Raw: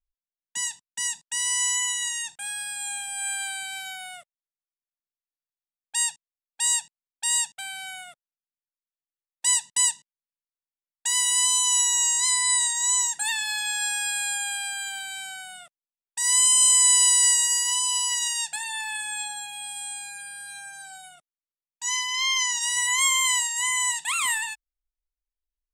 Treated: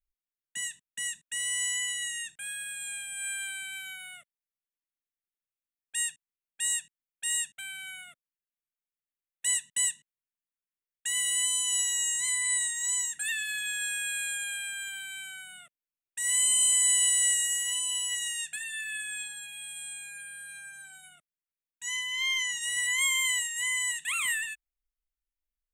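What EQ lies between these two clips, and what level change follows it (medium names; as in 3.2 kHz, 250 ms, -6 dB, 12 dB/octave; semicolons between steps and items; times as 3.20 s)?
dynamic bell 470 Hz, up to -6 dB, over -49 dBFS, Q 0.86; static phaser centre 2.1 kHz, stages 4; -1.5 dB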